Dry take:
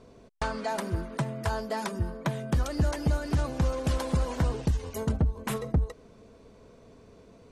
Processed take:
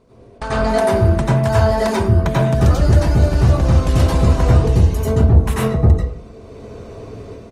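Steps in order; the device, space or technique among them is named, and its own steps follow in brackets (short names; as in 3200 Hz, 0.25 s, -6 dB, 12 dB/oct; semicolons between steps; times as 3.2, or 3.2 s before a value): speakerphone in a meeting room (reverb RT60 0.50 s, pre-delay 85 ms, DRR -6.5 dB; speakerphone echo 0.1 s, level -15 dB; AGC gain up to 11.5 dB; gain -1 dB; Opus 32 kbps 48000 Hz)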